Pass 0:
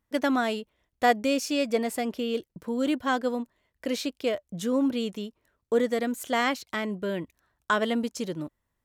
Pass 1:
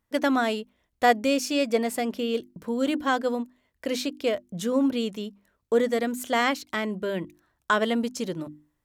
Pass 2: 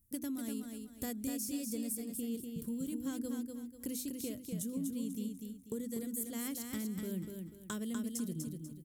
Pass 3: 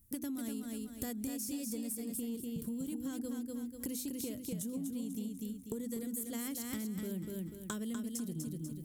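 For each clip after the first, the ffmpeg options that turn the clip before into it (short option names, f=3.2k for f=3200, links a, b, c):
-af "bandreject=f=50:t=h:w=6,bandreject=f=100:t=h:w=6,bandreject=f=150:t=h:w=6,bandreject=f=200:t=h:w=6,bandreject=f=250:t=h:w=6,bandreject=f=300:t=h:w=6,bandreject=f=350:t=h:w=6,volume=2dB"
-filter_complex "[0:a]firequalizer=gain_entry='entry(130,0);entry(660,-28);entry(9500,7)':delay=0.05:min_phase=1,acompressor=threshold=-43dB:ratio=6,asplit=2[a][b];[b]aecho=0:1:245|490|735|980:0.562|0.18|0.0576|0.0184[c];[a][c]amix=inputs=2:normalize=0,volume=5.5dB"
-af "areverse,acompressor=mode=upward:threshold=-52dB:ratio=2.5,areverse,asoftclip=type=tanh:threshold=-26.5dB,acompressor=threshold=-43dB:ratio=6,volume=6.5dB"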